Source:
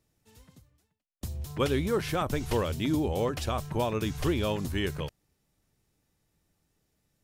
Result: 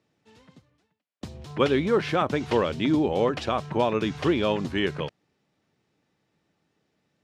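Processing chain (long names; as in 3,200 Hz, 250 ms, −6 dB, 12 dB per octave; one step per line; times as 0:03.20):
band-pass filter 170–3,800 Hz
level +6 dB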